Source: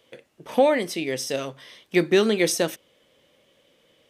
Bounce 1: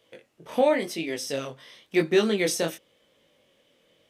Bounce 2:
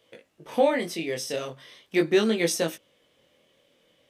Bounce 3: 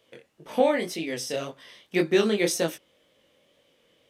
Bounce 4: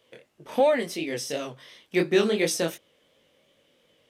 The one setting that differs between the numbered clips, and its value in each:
chorus, rate: 0.93 Hz, 0.41 Hz, 1.9 Hz, 2.8 Hz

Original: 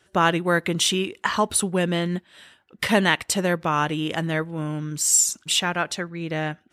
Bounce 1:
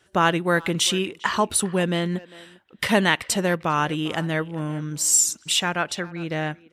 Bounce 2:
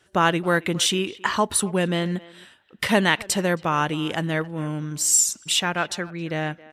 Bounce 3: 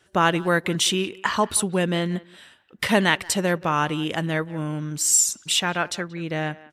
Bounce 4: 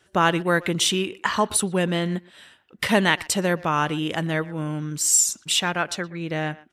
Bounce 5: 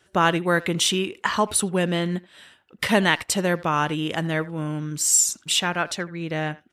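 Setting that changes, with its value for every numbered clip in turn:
speakerphone echo, time: 400 ms, 270 ms, 180 ms, 120 ms, 80 ms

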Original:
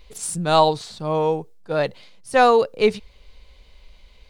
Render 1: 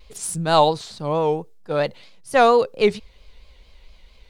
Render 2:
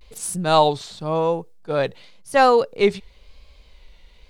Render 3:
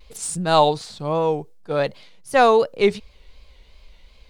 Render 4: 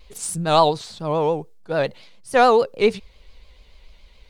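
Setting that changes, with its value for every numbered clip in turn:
vibrato, rate: 4.4 Hz, 0.94 Hz, 2.7 Hz, 7 Hz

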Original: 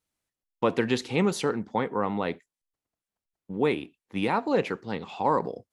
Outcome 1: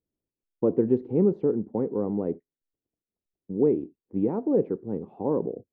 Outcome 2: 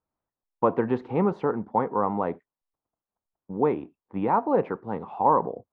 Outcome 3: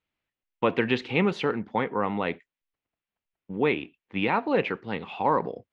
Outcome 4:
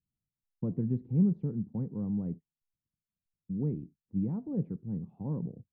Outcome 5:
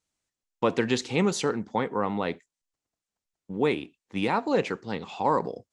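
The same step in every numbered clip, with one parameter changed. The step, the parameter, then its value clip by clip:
resonant low-pass, frequency: 390 Hz, 1 kHz, 2.7 kHz, 160 Hz, 7.3 kHz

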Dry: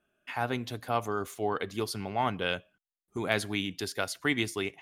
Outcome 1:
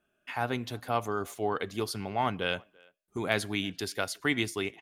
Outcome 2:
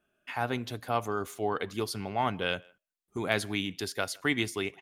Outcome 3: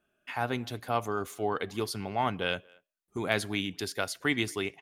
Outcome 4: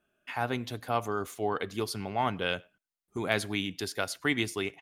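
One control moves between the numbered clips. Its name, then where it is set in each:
speakerphone echo, time: 340 ms, 160 ms, 230 ms, 100 ms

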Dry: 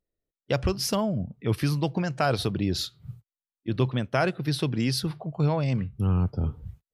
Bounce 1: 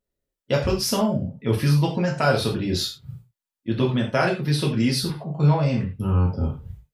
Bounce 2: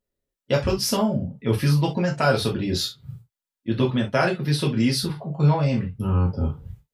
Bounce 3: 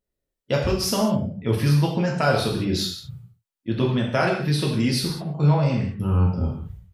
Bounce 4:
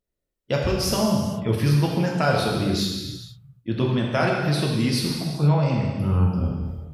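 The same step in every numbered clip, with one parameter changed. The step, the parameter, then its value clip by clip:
gated-style reverb, gate: 130 ms, 90 ms, 230 ms, 510 ms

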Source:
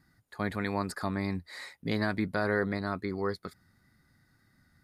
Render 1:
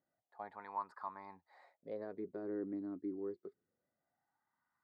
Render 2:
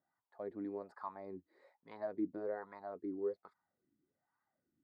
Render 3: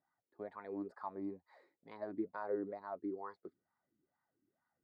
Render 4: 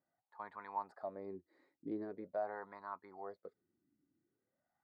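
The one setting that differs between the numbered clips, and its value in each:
wah-wah, rate: 0.26 Hz, 1.2 Hz, 2.2 Hz, 0.44 Hz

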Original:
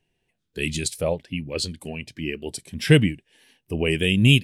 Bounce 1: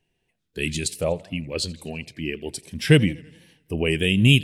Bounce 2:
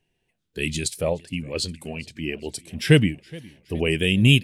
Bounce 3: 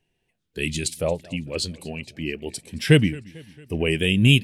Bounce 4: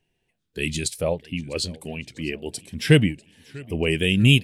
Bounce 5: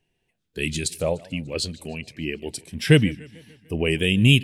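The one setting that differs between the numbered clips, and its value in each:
modulated delay, time: 83 ms, 416 ms, 224 ms, 646 ms, 148 ms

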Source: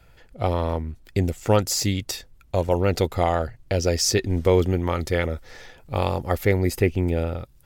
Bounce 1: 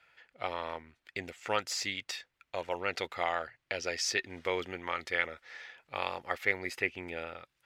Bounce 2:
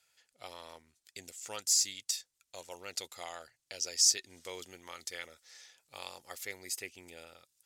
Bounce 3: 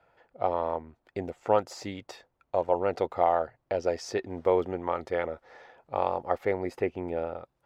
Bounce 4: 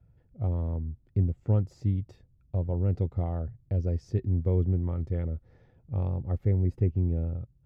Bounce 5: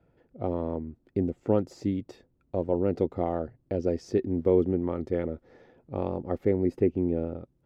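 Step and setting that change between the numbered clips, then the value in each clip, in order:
band-pass filter, frequency: 2.1 kHz, 7.4 kHz, 800 Hz, 110 Hz, 290 Hz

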